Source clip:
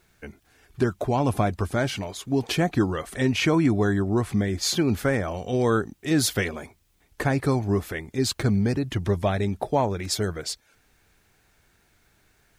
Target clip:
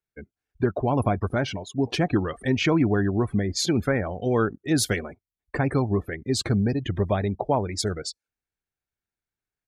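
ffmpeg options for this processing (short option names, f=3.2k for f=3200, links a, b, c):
-af "afftdn=nr=30:nf=-37,atempo=1.3"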